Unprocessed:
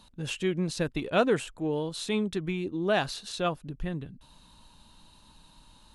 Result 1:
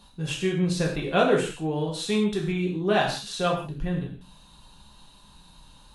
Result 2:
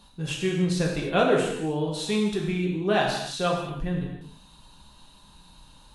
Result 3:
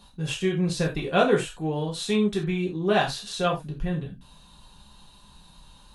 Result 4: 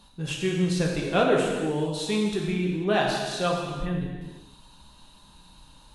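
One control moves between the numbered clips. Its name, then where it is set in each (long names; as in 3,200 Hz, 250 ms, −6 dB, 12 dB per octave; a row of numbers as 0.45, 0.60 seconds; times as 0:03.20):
reverb whose tail is shaped and stops, gate: 200, 340, 110, 520 milliseconds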